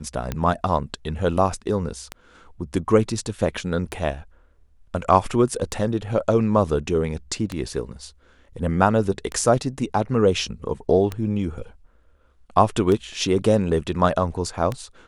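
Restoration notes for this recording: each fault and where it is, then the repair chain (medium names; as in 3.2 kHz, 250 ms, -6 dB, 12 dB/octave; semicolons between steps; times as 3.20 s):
tick 33 1/3 rpm -12 dBFS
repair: de-click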